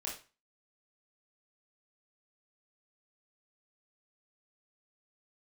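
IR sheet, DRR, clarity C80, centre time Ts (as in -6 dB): -5.0 dB, 13.0 dB, 30 ms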